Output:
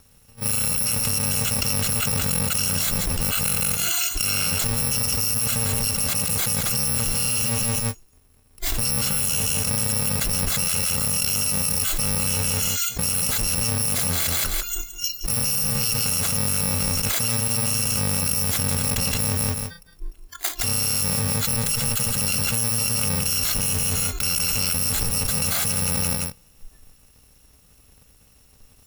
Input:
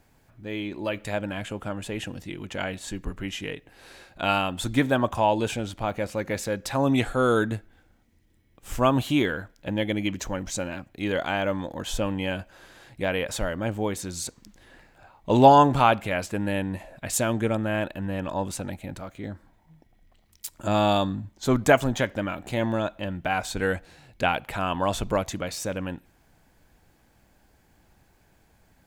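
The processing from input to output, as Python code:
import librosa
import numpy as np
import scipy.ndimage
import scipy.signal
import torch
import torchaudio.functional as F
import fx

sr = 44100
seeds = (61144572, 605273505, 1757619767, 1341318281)

p1 = fx.bit_reversed(x, sr, seeds[0], block=128)
p2 = fx.noise_reduce_blind(p1, sr, reduce_db=26)
p3 = fx.clip_asym(p2, sr, top_db=-21.0, bottom_db=-9.5)
p4 = p3 + fx.echo_feedback(p3, sr, ms=169, feedback_pct=19, wet_db=-12.0, dry=0)
p5 = fx.env_flatten(p4, sr, amount_pct=100)
y = F.gain(torch.from_numpy(p5), -7.0).numpy()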